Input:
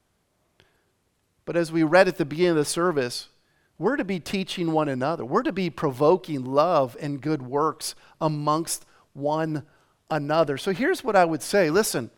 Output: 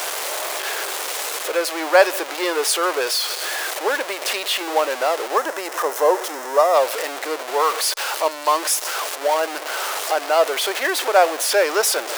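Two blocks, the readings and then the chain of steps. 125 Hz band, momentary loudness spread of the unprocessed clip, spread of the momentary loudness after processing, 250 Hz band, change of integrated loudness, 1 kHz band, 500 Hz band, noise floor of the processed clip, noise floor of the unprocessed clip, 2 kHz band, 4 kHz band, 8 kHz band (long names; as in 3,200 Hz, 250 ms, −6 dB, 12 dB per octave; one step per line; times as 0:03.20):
below −40 dB, 10 LU, 8 LU, −8.5 dB, +4.0 dB, +6.0 dB, +3.5 dB, −32 dBFS, −70 dBFS, +7.0 dB, +11.5 dB, +11.5 dB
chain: converter with a step at zero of −21 dBFS
inverse Chebyshev high-pass filter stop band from 180 Hz, stop band 50 dB
gain on a spectral selection 0:05.37–0:06.74, 2,100–5,000 Hz −7 dB
level +3 dB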